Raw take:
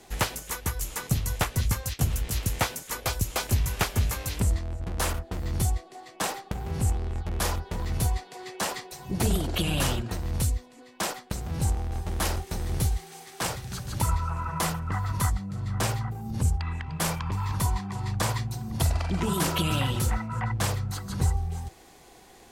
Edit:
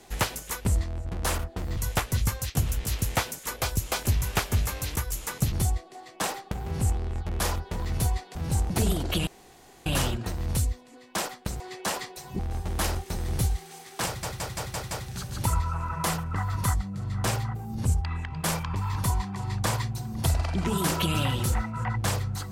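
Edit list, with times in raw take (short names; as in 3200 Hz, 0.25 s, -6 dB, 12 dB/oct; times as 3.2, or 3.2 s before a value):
0.65–1.21 swap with 4.4–5.52
8.35–9.14 swap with 11.45–11.8
9.71 insert room tone 0.59 s
13.47 stutter 0.17 s, 6 plays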